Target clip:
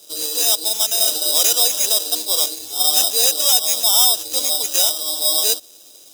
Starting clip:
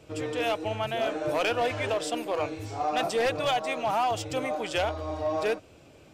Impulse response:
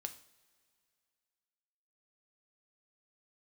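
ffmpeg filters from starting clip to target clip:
-filter_complex "[0:a]acrossover=split=260 2600:gain=0.0708 1 0.178[a][b][c];[a][b][c]amix=inputs=3:normalize=0,acrusher=samples=10:mix=1:aa=0.000001,aexciter=amount=8.2:drive=9.5:freq=3.2k,volume=-2dB"

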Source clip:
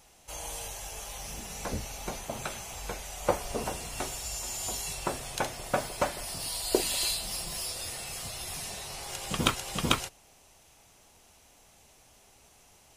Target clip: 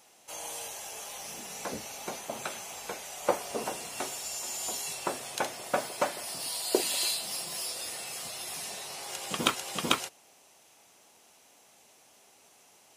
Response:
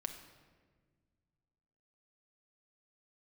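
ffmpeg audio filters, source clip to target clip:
-af "highpass=230"

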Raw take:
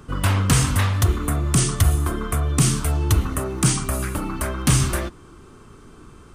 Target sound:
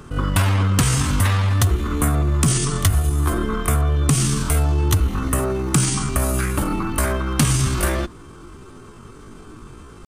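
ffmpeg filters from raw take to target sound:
-af "acompressor=threshold=-18dB:ratio=16,atempo=0.63,volume=5dB"

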